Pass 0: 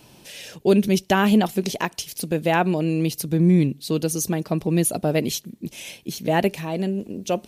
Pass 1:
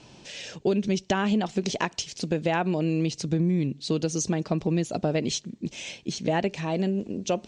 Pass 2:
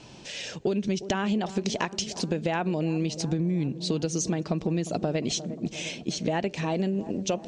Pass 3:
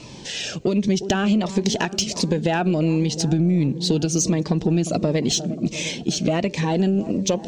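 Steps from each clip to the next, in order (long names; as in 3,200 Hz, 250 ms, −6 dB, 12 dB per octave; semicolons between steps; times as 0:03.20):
downward compressor 6 to 1, threshold −21 dBFS, peak gain reduction 9.5 dB; Butterworth low-pass 7,600 Hz 48 dB per octave
delay with a low-pass on its return 354 ms, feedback 64%, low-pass 950 Hz, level −16 dB; downward compressor 3 to 1, threshold −27 dBFS, peak gain reduction 6 dB; level +2.5 dB
in parallel at −7.5 dB: soft clipping −26.5 dBFS, distortion −11 dB; on the sum: phaser whose notches keep moving one way falling 1.4 Hz; level +6 dB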